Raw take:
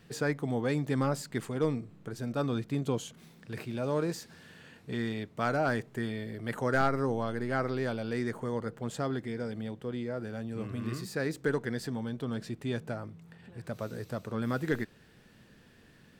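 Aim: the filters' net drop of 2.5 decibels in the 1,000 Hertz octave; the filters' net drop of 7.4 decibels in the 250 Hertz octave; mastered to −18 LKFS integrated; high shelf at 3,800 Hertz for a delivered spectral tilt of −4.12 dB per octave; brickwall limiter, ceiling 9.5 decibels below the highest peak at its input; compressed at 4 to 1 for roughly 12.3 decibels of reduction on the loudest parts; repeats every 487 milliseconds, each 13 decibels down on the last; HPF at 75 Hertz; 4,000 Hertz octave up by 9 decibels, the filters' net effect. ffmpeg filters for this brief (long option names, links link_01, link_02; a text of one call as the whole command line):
ffmpeg -i in.wav -af "highpass=75,equalizer=frequency=250:width_type=o:gain=-9,equalizer=frequency=1000:width_type=o:gain=-4.5,highshelf=frequency=3800:gain=9,equalizer=frequency=4000:width_type=o:gain=5.5,acompressor=threshold=-41dB:ratio=4,alimiter=level_in=11.5dB:limit=-24dB:level=0:latency=1,volume=-11.5dB,aecho=1:1:487|974|1461:0.224|0.0493|0.0108,volume=28.5dB" out.wav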